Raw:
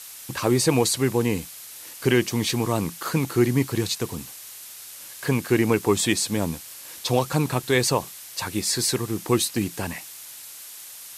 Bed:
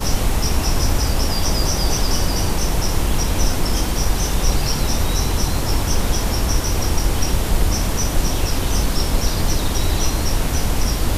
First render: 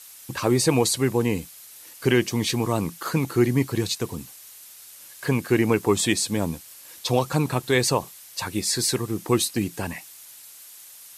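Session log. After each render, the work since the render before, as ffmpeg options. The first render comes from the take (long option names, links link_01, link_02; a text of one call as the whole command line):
ffmpeg -i in.wav -af "afftdn=noise_reduction=6:noise_floor=-41" out.wav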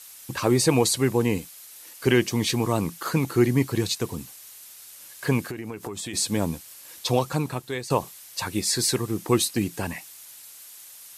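ffmpeg -i in.wav -filter_complex "[0:a]asettb=1/sr,asplit=3[link_01][link_02][link_03];[link_01]atrim=end=1.384[link_04];[link_02]atrim=start=1.38:end=2.07,asetpts=PTS-STARTPTS,afade=type=in:duration=0.004:curve=qsin,afade=type=out:start_time=0.686:duration=0.004:curve=qsin,lowshelf=frequency=130:gain=-8.5[link_05];[link_03]atrim=start=2.066[link_06];[link_04][link_05]acrossfade=duration=0.004:curve1=hsin:curve2=qsin[link_07];[link_07][link_06]acrossfade=duration=0.004:curve1=qsin:curve2=hsin,asplit=3[link_08][link_09][link_10];[link_08]afade=type=out:start_time=5.47:duration=0.02[link_11];[link_09]acompressor=threshold=-29dB:ratio=20:attack=3.2:release=140:knee=1:detection=peak,afade=type=in:start_time=5.47:duration=0.02,afade=type=out:start_time=6.13:duration=0.02[link_12];[link_10]afade=type=in:start_time=6.13:duration=0.02[link_13];[link_11][link_12][link_13]amix=inputs=3:normalize=0,asplit=2[link_14][link_15];[link_14]atrim=end=7.9,asetpts=PTS-STARTPTS,afade=type=out:start_time=7.08:duration=0.82:silence=0.149624[link_16];[link_15]atrim=start=7.9,asetpts=PTS-STARTPTS,afade=type=in:duration=0.004:curve=hsin:silence=0.149624[link_17];[link_16][link_17]concat=n=2:v=0:a=1" out.wav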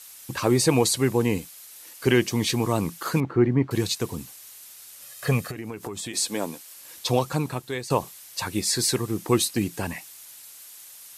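ffmpeg -i in.wav -filter_complex "[0:a]asettb=1/sr,asplit=3[link_01][link_02][link_03];[link_01]atrim=end=3.204[link_04];[link_02]atrim=start=3.2:end=3.71,asetpts=PTS-STARTPTS,afade=type=in:duration=0.004:curve=qsin,afade=type=out:start_time=0.506:duration=0.004:curve=qsin,lowpass=1600[link_05];[link_03]atrim=start=3.706[link_06];[link_04][link_05]acrossfade=duration=0.004:curve1=hsin:curve2=qsin[link_07];[link_07][link_06]acrossfade=duration=0.004:curve1=qsin:curve2=hsin,asettb=1/sr,asplit=3[link_08][link_09][link_10];[link_08]atrim=end=5.024[link_11];[link_09]atrim=start=5.02:end=5.56,asetpts=PTS-STARTPTS,afade=type=in:duration=0.004:curve=qsin,afade=type=out:start_time=0.536:duration=0.004:curve=qsin,aecho=1:1:1.6:0.65,atrim=end_sample=23814[link_12];[link_10]atrim=start=5.556[link_13];[link_11][link_12]acrossfade=duration=0.004:curve1=hsin:curve2=qsin[link_14];[link_14][link_13]acrossfade=duration=0.004:curve1=qsin:curve2=hsin,asettb=1/sr,asplit=3[link_15][link_16][link_17];[link_15]atrim=end=6.124[link_18];[link_16]atrim=start=6.12:end=6.76,asetpts=PTS-STARTPTS,afade=type=in:duration=0.004:curve=qsin,afade=type=out:start_time=0.636:duration=0.004:curve=qsin,highpass=310[link_19];[link_17]atrim=start=6.756[link_20];[link_18][link_19]acrossfade=duration=0.004:curve1=hsin:curve2=qsin[link_21];[link_21][link_20]acrossfade=duration=0.004:curve1=qsin:curve2=hsin" out.wav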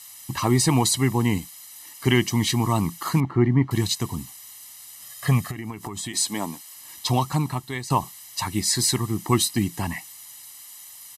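ffmpeg -i in.wav -af "aecho=1:1:1:0.75" out.wav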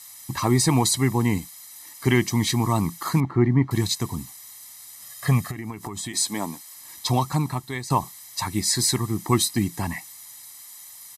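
ffmpeg -i in.wav -af "bandreject=frequency=2900:width=6.1" out.wav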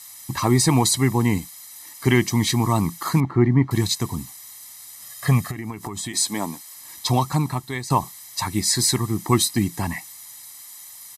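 ffmpeg -i in.wav -af "volume=2dB" out.wav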